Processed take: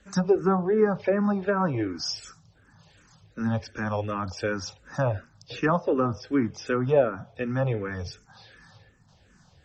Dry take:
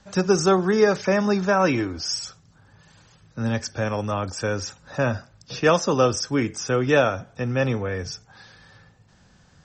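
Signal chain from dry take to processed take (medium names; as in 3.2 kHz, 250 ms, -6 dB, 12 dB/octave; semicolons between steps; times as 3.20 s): low-pass that closes with the level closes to 1.1 kHz, closed at -16 dBFS; barber-pole phaser -2.7 Hz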